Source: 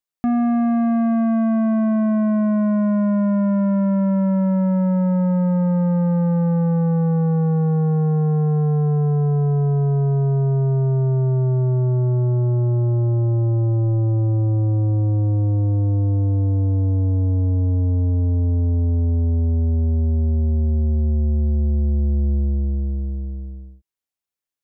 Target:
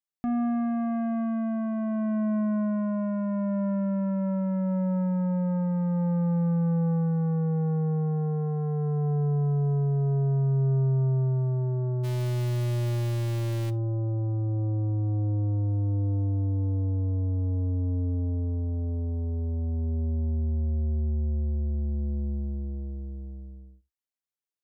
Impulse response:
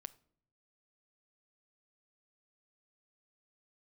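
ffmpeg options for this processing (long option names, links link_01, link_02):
-filter_complex "[0:a]asplit=3[link_01][link_02][link_03];[link_01]afade=type=out:start_time=12.03:duration=0.02[link_04];[link_02]acrusher=bits=5:dc=4:mix=0:aa=0.000001,afade=type=in:start_time=12.03:duration=0.02,afade=type=out:start_time=13.69:duration=0.02[link_05];[link_03]afade=type=in:start_time=13.69:duration=0.02[link_06];[link_04][link_05][link_06]amix=inputs=3:normalize=0[link_07];[1:a]atrim=start_sample=2205,afade=type=out:start_time=0.14:duration=0.01,atrim=end_sample=6615[link_08];[link_07][link_08]afir=irnorm=-1:irlink=0,volume=-3dB"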